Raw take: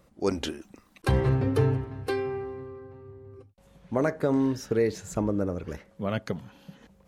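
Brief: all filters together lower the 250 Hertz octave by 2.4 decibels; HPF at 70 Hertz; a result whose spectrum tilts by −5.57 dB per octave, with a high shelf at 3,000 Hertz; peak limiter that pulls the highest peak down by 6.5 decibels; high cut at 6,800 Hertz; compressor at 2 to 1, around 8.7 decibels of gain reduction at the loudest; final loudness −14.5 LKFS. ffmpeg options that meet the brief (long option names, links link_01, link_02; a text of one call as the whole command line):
ffmpeg -i in.wav -af "highpass=70,lowpass=6800,equalizer=frequency=250:width_type=o:gain=-3,highshelf=frequency=3000:gain=7.5,acompressor=threshold=-36dB:ratio=2,volume=24dB,alimiter=limit=-2dB:level=0:latency=1" out.wav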